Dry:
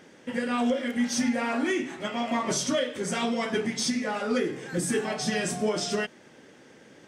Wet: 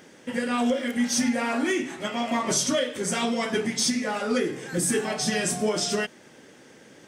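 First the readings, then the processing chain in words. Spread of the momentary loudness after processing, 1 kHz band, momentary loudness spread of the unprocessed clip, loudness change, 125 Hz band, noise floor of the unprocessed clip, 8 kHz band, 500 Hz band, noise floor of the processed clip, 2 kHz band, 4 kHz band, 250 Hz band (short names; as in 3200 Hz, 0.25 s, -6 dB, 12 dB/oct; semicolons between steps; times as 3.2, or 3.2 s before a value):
5 LU, +1.5 dB, 5 LU, +2.5 dB, +1.5 dB, -53 dBFS, +5.5 dB, +1.5 dB, -52 dBFS, +2.0 dB, +3.5 dB, +1.5 dB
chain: high shelf 7400 Hz +9 dB; gain +1.5 dB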